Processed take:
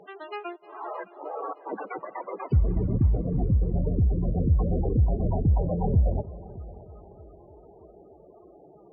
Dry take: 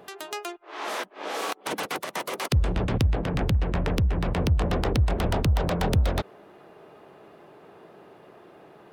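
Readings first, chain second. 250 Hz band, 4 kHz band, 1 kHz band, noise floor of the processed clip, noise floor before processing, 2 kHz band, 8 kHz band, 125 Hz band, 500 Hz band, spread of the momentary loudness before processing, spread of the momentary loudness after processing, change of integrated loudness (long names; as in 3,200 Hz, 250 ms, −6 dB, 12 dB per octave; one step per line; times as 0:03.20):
0.0 dB, below −20 dB, −4.5 dB, −53 dBFS, −52 dBFS, below −10 dB, below −40 dB, +1.0 dB, −2.0 dB, 10 LU, 15 LU, 0.0 dB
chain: spectral peaks only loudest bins 16
bass and treble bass +1 dB, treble −12 dB
echo machine with several playback heads 308 ms, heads first and second, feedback 44%, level −21 dB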